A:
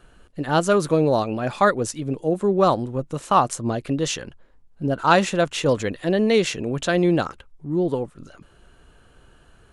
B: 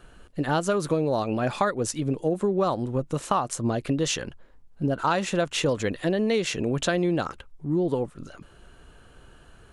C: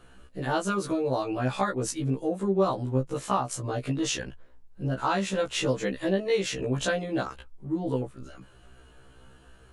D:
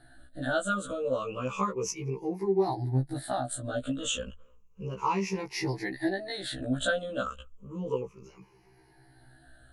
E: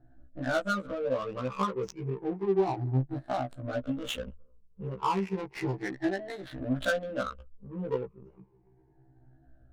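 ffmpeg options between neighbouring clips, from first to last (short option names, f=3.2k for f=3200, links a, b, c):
-af "acompressor=threshold=-22dB:ratio=6,volume=1.5dB"
-af "afftfilt=real='re*1.73*eq(mod(b,3),0)':imag='im*1.73*eq(mod(b,3),0)':win_size=2048:overlap=0.75"
-af "afftfilt=real='re*pow(10,22/40*sin(2*PI*(0.79*log(max(b,1)*sr/1024/100)/log(2)-(-0.32)*(pts-256)/sr)))':imag='im*pow(10,22/40*sin(2*PI*(0.79*log(max(b,1)*sr/1024/100)/log(2)-(-0.32)*(pts-256)/sr)))':win_size=1024:overlap=0.75,volume=-7.5dB"
-af "adynamicsmooth=sensitivity=5:basefreq=530"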